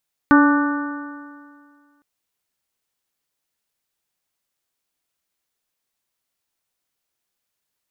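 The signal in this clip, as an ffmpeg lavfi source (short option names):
-f lavfi -i "aevalsrc='0.355*pow(10,-3*t/1.98)*sin(2*PI*287.39*t)+0.0631*pow(10,-3*t/1.98)*sin(2*PI*577.09*t)+0.106*pow(10,-3*t/1.98)*sin(2*PI*871.4*t)+0.158*pow(10,-3*t/1.98)*sin(2*PI*1172.53*t)+0.158*pow(10,-3*t/1.98)*sin(2*PI*1482.64*t)+0.0398*pow(10,-3*t/1.98)*sin(2*PI*1803.75*t)':d=1.71:s=44100"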